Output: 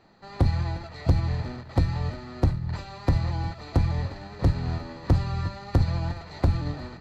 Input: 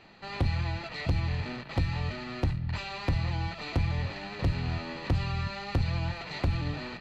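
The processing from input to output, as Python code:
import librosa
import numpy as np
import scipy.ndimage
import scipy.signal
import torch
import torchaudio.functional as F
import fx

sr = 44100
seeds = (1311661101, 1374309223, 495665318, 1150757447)

p1 = fx.peak_eq(x, sr, hz=2700.0, db=-12.5, octaves=0.91)
p2 = p1 + fx.echo_feedback(p1, sr, ms=356, feedback_pct=55, wet_db=-15.0, dry=0)
p3 = fx.upward_expand(p2, sr, threshold_db=-40.0, expansion=1.5)
y = p3 * librosa.db_to_amplitude(7.5)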